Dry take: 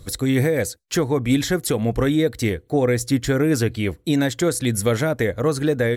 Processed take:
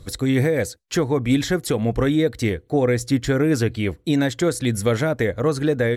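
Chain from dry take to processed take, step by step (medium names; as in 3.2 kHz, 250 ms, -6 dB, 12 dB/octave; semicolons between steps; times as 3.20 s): treble shelf 9.3 kHz -9.5 dB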